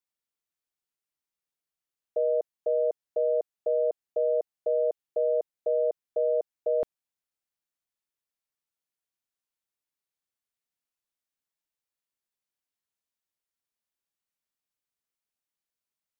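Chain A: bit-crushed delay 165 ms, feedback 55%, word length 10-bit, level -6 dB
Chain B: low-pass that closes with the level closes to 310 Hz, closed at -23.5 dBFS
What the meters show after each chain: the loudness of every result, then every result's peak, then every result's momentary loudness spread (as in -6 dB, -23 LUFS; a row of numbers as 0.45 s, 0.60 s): -28.0 LUFS, -36.0 LUFS; -17.5 dBFS, -19.0 dBFS; 4 LU, 3 LU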